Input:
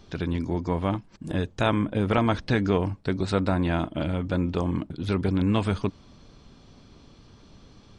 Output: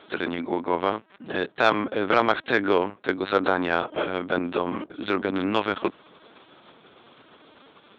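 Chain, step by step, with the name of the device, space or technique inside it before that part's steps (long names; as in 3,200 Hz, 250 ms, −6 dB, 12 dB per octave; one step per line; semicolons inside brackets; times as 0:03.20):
talking toy (linear-prediction vocoder at 8 kHz pitch kept; high-pass filter 390 Hz 12 dB per octave; parametric band 1,500 Hz +4.5 dB 0.44 octaves; soft clipping −12.5 dBFS, distortion −19 dB)
level +7 dB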